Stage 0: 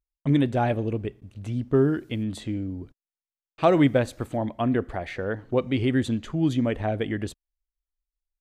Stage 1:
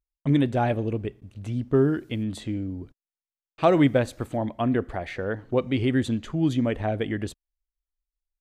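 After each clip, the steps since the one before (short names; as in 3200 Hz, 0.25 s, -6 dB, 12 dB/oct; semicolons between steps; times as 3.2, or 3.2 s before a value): nothing audible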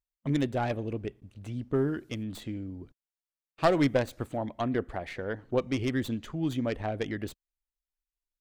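tracing distortion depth 0.15 ms; harmonic-percussive split percussive +4 dB; gain -7.5 dB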